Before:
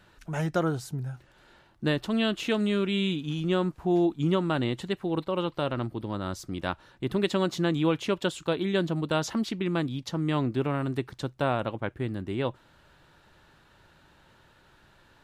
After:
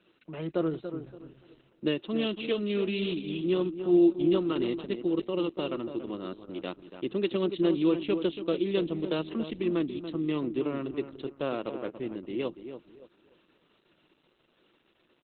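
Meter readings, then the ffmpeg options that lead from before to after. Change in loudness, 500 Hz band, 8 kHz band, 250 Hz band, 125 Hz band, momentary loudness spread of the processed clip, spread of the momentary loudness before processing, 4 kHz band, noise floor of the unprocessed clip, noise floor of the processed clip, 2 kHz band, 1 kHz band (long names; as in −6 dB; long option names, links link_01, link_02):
−1.5 dB, 0.0 dB, below −35 dB, −0.5 dB, −9.0 dB, 13 LU, 8 LU, −4.0 dB, −60 dBFS, −70 dBFS, −7.0 dB, −8.5 dB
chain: -filter_complex "[0:a]highpass=frequency=170:width=0.5412,highpass=frequency=170:width=1.3066,equalizer=frequency=340:width_type=q:width=4:gain=8,equalizer=frequency=480:width_type=q:width=4:gain=4,equalizer=frequency=810:width_type=q:width=4:gain=-9,equalizer=frequency=1600:width_type=q:width=4:gain=-9,equalizer=frequency=2800:width_type=q:width=4:gain=6,lowpass=frequency=8400:width=0.5412,lowpass=frequency=8400:width=1.3066,asplit=2[link_01][link_02];[link_02]adelay=285,lowpass=frequency=1900:poles=1,volume=-9dB,asplit=2[link_03][link_04];[link_04]adelay=285,lowpass=frequency=1900:poles=1,volume=0.32,asplit=2[link_05][link_06];[link_06]adelay=285,lowpass=frequency=1900:poles=1,volume=0.32,asplit=2[link_07][link_08];[link_08]adelay=285,lowpass=frequency=1900:poles=1,volume=0.32[link_09];[link_01][link_03][link_05][link_07][link_09]amix=inputs=5:normalize=0,volume=-4.5dB" -ar 48000 -c:a libopus -b:a 8k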